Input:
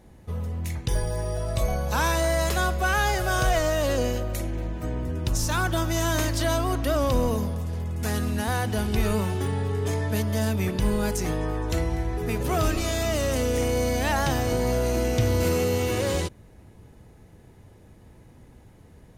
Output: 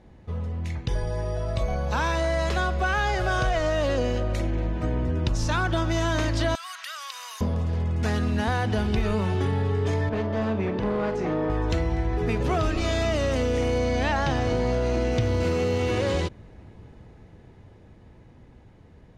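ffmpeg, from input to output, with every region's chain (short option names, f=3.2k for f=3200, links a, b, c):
-filter_complex "[0:a]asettb=1/sr,asplit=3[a][b][c];[a]atrim=end=6.554[d];[b]atrim=start=6.55:end=7.41,asetpts=PTS-STARTPTS,afade=t=in:d=0.004:c=qsin,afade=t=out:st=0.856:d=0.004:c=qsin,highpass=f=1.3k:w=0.5412,highpass=f=1.3k:w=1.3066,acompressor=threshold=-40dB:ratio=3:attack=3.2:release=140:knee=1:detection=peak,aemphasis=mode=production:type=bsi[e];[c]atrim=start=7.406[f];[d][e]acrossfade=d=0.004:c1=hsin:c2=qsin[g];[g][f]acrossfade=d=0.004:c1=qsin:c2=hsin,asettb=1/sr,asplit=3[h][i][j];[h]atrim=end=10.094[k];[i]atrim=start=10.09:end=11.5,asetpts=PTS-STARTPTS,afade=t=in:d=0.004:c=qsin,afade=t=out:st=1.406:d=0.004:c=qsin,bandpass=f=540:t=q:w=0.51,asoftclip=type=hard:threshold=-26.5dB,asplit=2[l][m];[m]adelay=45,volume=-9dB[n];[l][n]amix=inputs=2:normalize=0,atrim=end_sample=62181[o];[j]atrim=start=11.496[p];[k][o]acrossfade=d=0.004:c1=hsin:c2=qsin[q];[q][p]acrossfade=d=0.004:c1=qsin:c2=hsin,asettb=1/sr,asplit=3[r][s][t];[r]atrim=end=13.784[u];[s]atrim=start=13.78:end=15.12,asetpts=PTS-STARTPTS,afade=t=in:d=0.004:c=qsin,afade=t=out:st=1.336:d=0.004:c=qsin,lowpass=7.9k,acrusher=bits=8:dc=4:mix=0:aa=0.000001[v];[t]atrim=start=15.116[w];[u][v]acrossfade=d=0.004:c1=hsin:c2=qsin[x];[x][w]acrossfade=d=0.004:c1=qsin:c2=hsin,dynaudnorm=f=330:g=17:m=5dB,lowpass=4.4k,acompressor=threshold=-21dB:ratio=4"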